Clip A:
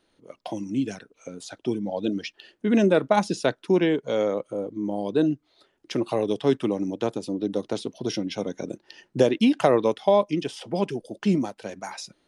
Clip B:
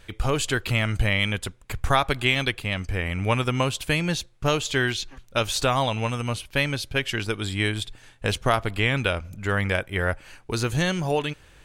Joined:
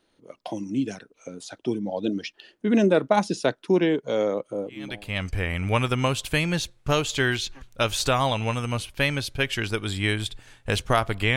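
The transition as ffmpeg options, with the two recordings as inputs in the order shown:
-filter_complex "[0:a]apad=whole_dur=11.36,atrim=end=11.36,atrim=end=5.2,asetpts=PTS-STARTPTS[a];[1:a]atrim=start=2.16:end=8.92,asetpts=PTS-STARTPTS[b];[a][b]acrossfade=d=0.6:c1=qua:c2=qua"

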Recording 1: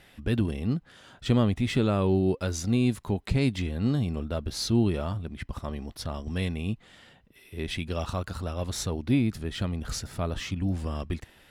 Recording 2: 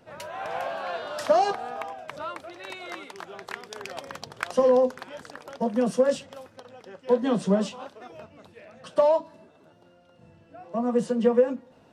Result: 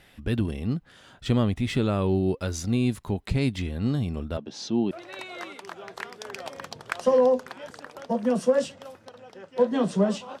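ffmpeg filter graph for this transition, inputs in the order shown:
-filter_complex "[0:a]asettb=1/sr,asplit=3[a][b][c];[a]atrim=end=4.374[d];[b]atrim=start=4.37:end=4.91,asetpts=PTS-STARTPTS,afade=t=in:d=0.004:c=qsin,afade=t=out:st=0.536:d=0.004:c=qsin,highpass=f=170:w=0.5412,highpass=f=170:w=1.3066,equalizer=f=820:t=q:w=4:g=4,equalizer=f=1.3k:t=q:w=4:g=-8,equalizer=f=2.1k:t=q:w=4:g=-7,equalizer=f=4.4k:t=q:w=4:g=-8,lowpass=f=6k:w=0.5412,lowpass=f=6k:w=1.3066[e];[c]atrim=start=4.906[f];[d][e]acrossfade=d=0.004:c1=hsin:c2=qsin[g];[g][f]acrossfade=d=0.004:c1=qsin:c2=hsin,apad=whole_dur=10.4,atrim=end=10.4,atrim=end=4.912[h];[1:a]atrim=start=2.418:end=7.91[i];[h][i]acrossfade=d=0.004:c1=hsin:c2=hsin"

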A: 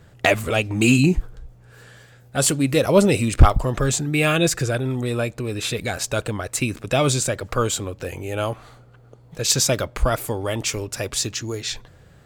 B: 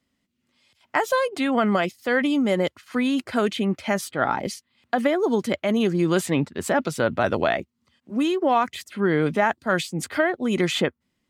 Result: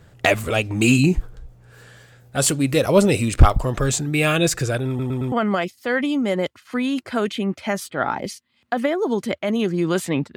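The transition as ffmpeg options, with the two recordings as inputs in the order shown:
-filter_complex "[0:a]apad=whole_dur=10.36,atrim=end=10.36,asplit=4[a][b][c][d];[a]atrim=end=4.992[e];[b]atrim=start=4.878:end=4.992[f];[c]atrim=start=4.878:end=4.992[g];[d]atrim=start=4.878:end=4.992[h];[1:a]atrim=start=1.528:end=6.57[i];[e][f]acrossfade=d=0.004:c1=hsin:c2=hsin[j];[j][g]acrossfade=d=0.004:c1=hsin:c2=hsin[k];[k][h]acrossfade=d=0.004:c1=hsin:c2=hsin[l];[l][i]acrossfade=d=0.004:c1=hsin:c2=hsin"

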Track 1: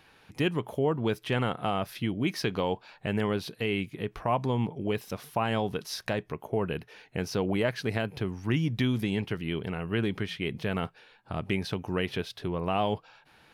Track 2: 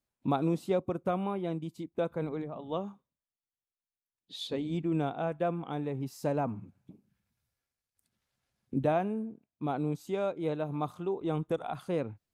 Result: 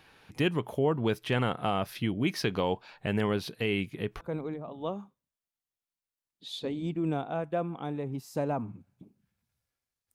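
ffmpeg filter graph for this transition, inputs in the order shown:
-filter_complex "[0:a]apad=whole_dur=10.14,atrim=end=10.14,atrim=end=4.212[a];[1:a]atrim=start=2.088:end=8.02[b];[a][b]acrossfade=d=0.004:c1=hsin:c2=hsin"

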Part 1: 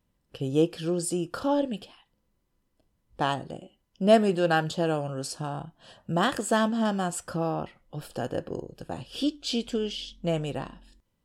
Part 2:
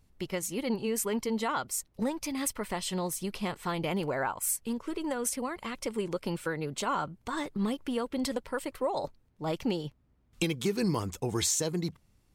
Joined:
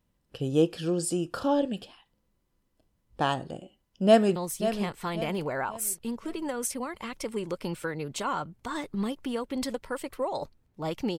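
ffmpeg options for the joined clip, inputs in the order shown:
-filter_complex "[0:a]apad=whole_dur=11.18,atrim=end=11.18,atrim=end=4.362[a];[1:a]atrim=start=2.978:end=9.8[b];[a][b]acrossfade=d=0.004:c1=hsin:c2=hsin,asplit=2[c][d];[d]afade=t=in:st=4.06:d=0.01,afade=t=out:st=4.36:d=0.01,aecho=0:1:540|1080|1620|2160:0.316228|0.126491|0.0505964|0.0202386[e];[c][e]amix=inputs=2:normalize=0"

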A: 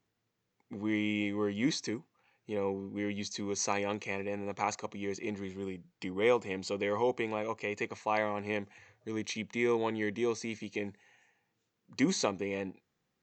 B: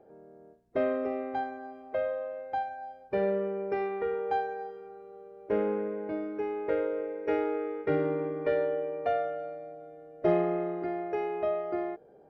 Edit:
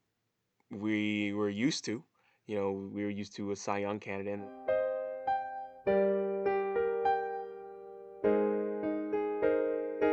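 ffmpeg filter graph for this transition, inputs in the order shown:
-filter_complex "[0:a]asettb=1/sr,asplit=3[a][b][c];[a]atrim=end=2.934[d];[b]atrim=start=2.93:end=4.5,asetpts=PTS-STARTPTS,afade=t=in:d=0.004:c=qsin,afade=t=out:st=1.566:d=0.004:c=qsin,lowpass=f=1.6k:p=1[e];[c]atrim=start=4.496[f];[d][e]acrossfade=d=0.004:c1=hsin:c2=qsin[g];[g][f]acrossfade=d=0.004:c1=qsin:c2=hsin,apad=whole_dur=10.12,atrim=end=10.12,atrim=end=4.5,asetpts=PTS-STARTPTS[h];[1:a]atrim=start=1.62:end=7.38,asetpts=PTS-STARTPTS[i];[h][i]acrossfade=d=0.14:c1=tri:c2=tri"

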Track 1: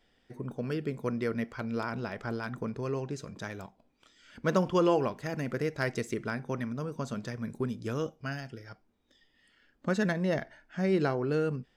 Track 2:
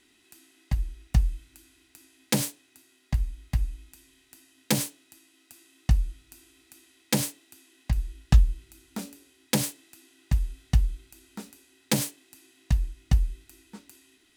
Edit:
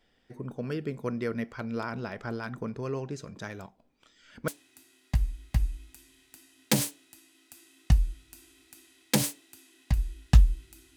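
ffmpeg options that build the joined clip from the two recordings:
-filter_complex "[0:a]apad=whole_dur=10.96,atrim=end=10.96,atrim=end=4.482[a];[1:a]atrim=start=2.468:end=8.95[b];[a][b]acrossfade=d=0.004:c1=hsin:c2=hsin"

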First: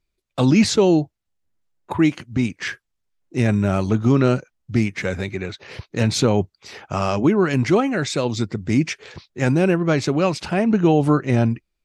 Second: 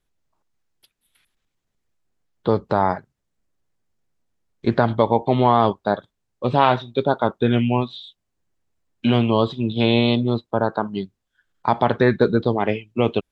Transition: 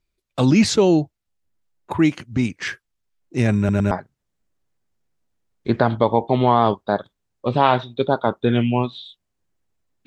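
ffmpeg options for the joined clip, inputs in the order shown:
-filter_complex "[0:a]apad=whole_dur=10.06,atrim=end=10.06,asplit=3[a][b][c];[a]atrim=end=3.692[d];[b]atrim=start=3.578:end=3.692[e];[c]atrim=start=3.578:end=3.692[f];[1:a]atrim=start=2.888:end=9.04[g];[d][e]acrossfade=d=0.004:c1=hsin:c2=hsin[h];[h][f]acrossfade=d=0.004:c1=hsin:c2=hsin[i];[i][g]acrossfade=d=0.004:c1=hsin:c2=hsin"

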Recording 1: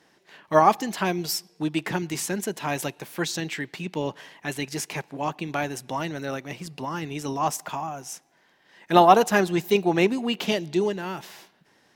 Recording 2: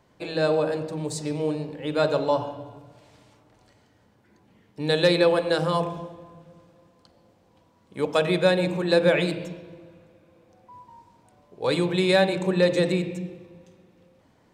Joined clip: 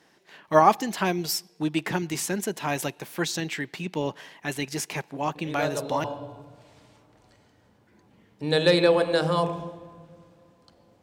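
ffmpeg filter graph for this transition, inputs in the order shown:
-filter_complex "[1:a]asplit=2[a][b];[0:a]apad=whole_dur=11.02,atrim=end=11.02,atrim=end=6.042[c];[b]atrim=start=2.408:end=7.39[d];[a]atrim=start=1.72:end=2.41,asetpts=PTS-STARTPTS,volume=-7.5dB,afade=t=in:d=0.004:c=hsin,afade=t=out:st=0.686:d=0.004:c=hsin,adelay=5350[e];[c][d]acrossfade=d=0.004:c1=hsin:c2=hsin[f];[f][e]amix=inputs=2:normalize=0"

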